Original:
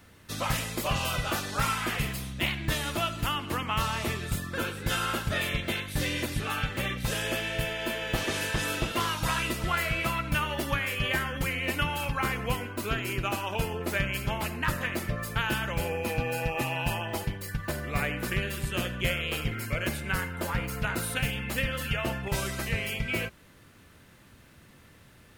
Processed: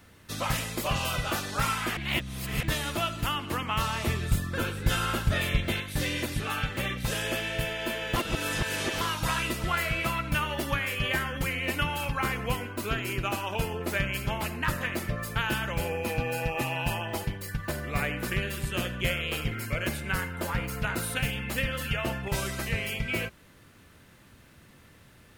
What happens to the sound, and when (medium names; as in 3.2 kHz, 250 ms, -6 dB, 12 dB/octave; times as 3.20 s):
1.97–2.63 s: reverse
4.06–5.80 s: bass shelf 120 Hz +9.5 dB
8.16–9.01 s: reverse